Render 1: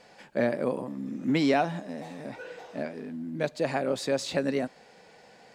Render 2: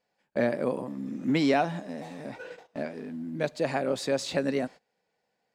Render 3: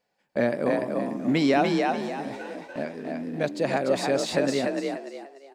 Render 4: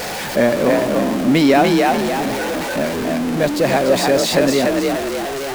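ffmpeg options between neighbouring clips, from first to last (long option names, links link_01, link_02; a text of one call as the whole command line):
ffmpeg -i in.wav -af "agate=range=-24dB:threshold=-42dB:ratio=16:detection=peak" out.wav
ffmpeg -i in.wav -filter_complex "[0:a]asplit=5[link_01][link_02][link_03][link_04][link_05];[link_02]adelay=293,afreqshift=45,volume=-3dB[link_06];[link_03]adelay=586,afreqshift=90,volume=-12.9dB[link_07];[link_04]adelay=879,afreqshift=135,volume=-22.8dB[link_08];[link_05]adelay=1172,afreqshift=180,volume=-32.7dB[link_09];[link_01][link_06][link_07][link_08][link_09]amix=inputs=5:normalize=0,volume=2dB" out.wav
ffmpeg -i in.wav -af "aeval=exprs='val(0)+0.5*0.0501*sgn(val(0))':channel_layout=same,volume=7dB" out.wav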